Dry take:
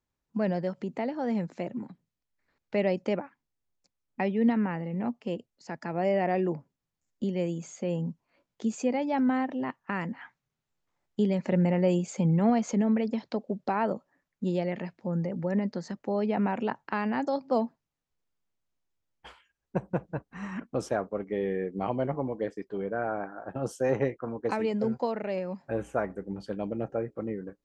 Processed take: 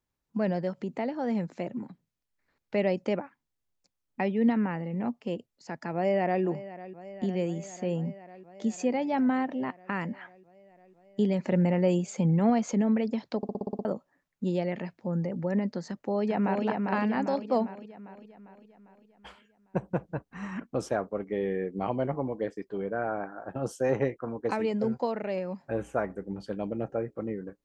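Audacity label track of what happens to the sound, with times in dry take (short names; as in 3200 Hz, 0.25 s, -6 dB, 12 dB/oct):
5.930000	6.430000	echo throw 0.5 s, feedback 80%, level -15.5 dB
13.370000	13.370000	stutter in place 0.06 s, 8 plays
15.870000	16.650000	echo throw 0.4 s, feedback 55%, level -3.5 dB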